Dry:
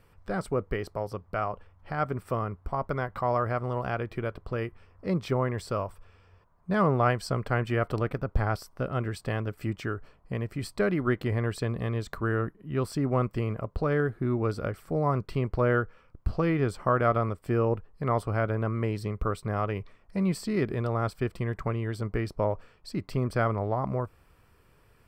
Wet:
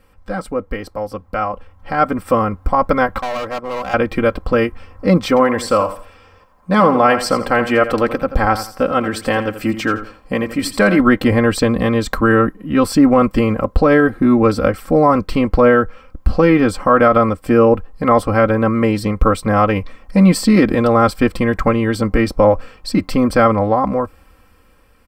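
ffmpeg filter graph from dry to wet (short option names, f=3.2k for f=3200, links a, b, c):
-filter_complex "[0:a]asettb=1/sr,asplit=3[a][b][c];[a]atrim=end=3.184[d];[b]atrim=start=3.18:end=3.94,asetpts=PTS-STARTPTS,afade=t=in:d=0.004:c=qsin,afade=t=out:st=0.756:d=0.004:c=qsin,acrossover=split=260|820[e][f][g];[e]acompressor=threshold=-44dB:ratio=4[h];[f]acompressor=threshold=-32dB:ratio=4[i];[g]acompressor=threshold=-38dB:ratio=4[j];[h][i][j]amix=inputs=3:normalize=0,agate=range=-33dB:threshold=-33dB:ratio=3:release=100:detection=peak,volume=36dB,asoftclip=hard,volume=-36dB[k];[c]atrim=start=3.936[l];[d][k]acrossfade=d=0.004:c1=hsin:c2=qsin[m];[m][l]acrossfade=d=0.004:c1=qsin:c2=hsin,asettb=1/sr,asplit=3[n][o][p];[n]atrim=end=5.284[q];[o]atrim=start=5.28:end=11,asetpts=PTS-STARTPTS,afade=t=in:d=0.004:c=qsin,afade=t=out:st=5.716:d=0.004:c=qsin,lowshelf=f=170:g=-9,aecho=1:1:84|168|252:0.251|0.0703|0.0197,atrim=end_sample=252252[r];[p]atrim=start=10.996[s];[q][r]acrossfade=d=0.004:c1=hsin:c2=qsin[t];[t][s]acrossfade=d=0.004:c1=qsin:c2=hsin,aecho=1:1:3.8:0.81,dynaudnorm=f=760:g=5:m=11.5dB,alimiter=level_in=6dB:limit=-1dB:release=50:level=0:latency=1,volume=-1dB"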